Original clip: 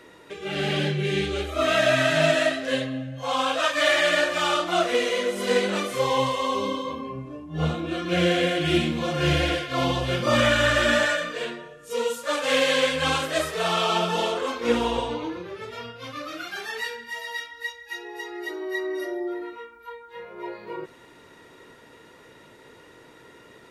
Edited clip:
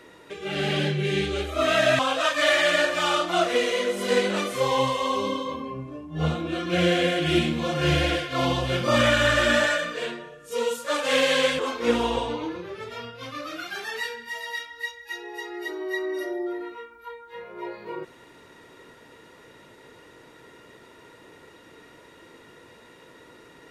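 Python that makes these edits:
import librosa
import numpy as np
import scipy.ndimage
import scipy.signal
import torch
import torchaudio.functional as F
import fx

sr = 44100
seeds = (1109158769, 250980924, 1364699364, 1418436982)

y = fx.edit(x, sr, fx.cut(start_s=1.99, length_s=1.39),
    fx.cut(start_s=12.98, length_s=1.42), tone=tone)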